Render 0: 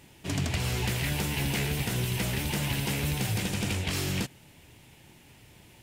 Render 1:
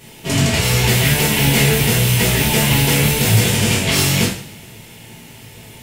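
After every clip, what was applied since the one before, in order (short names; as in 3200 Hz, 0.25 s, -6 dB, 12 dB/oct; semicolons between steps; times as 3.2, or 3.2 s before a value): high shelf 7000 Hz +4 dB; two-slope reverb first 0.48 s, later 2.2 s, from -25 dB, DRR -6.5 dB; gain +7.5 dB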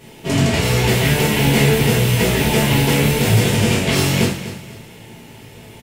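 EQ curve 110 Hz 0 dB, 380 Hz +4 dB, 12000 Hz -6 dB; feedback echo 0.247 s, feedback 32%, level -13 dB; gain -1 dB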